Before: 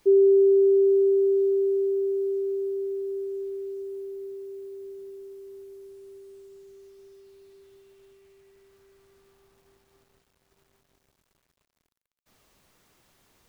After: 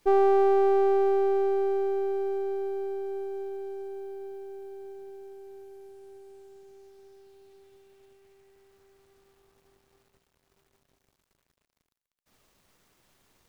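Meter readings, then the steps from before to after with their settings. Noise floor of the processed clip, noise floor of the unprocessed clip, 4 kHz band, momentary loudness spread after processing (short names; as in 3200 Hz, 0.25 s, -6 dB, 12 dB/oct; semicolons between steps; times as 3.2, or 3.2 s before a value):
-79 dBFS, -76 dBFS, n/a, 22 LU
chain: half-wave gain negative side -7 dB; Doppler distortion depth 0.33 ms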